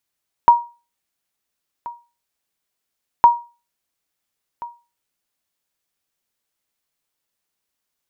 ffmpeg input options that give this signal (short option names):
-f lavfi -i "aevalsrc='0.794*(sin(2*PI*949*mod(t,2.76))*exp(-6.91*mod(t,2.76)/0.31)+0.0891*sin(2*PI*949*max(mod(t,2.76)-1.38,0))*exp(-6.91*max(mod(t,2.76)-1.38,0)/0.31))':d=5.52:s=44100"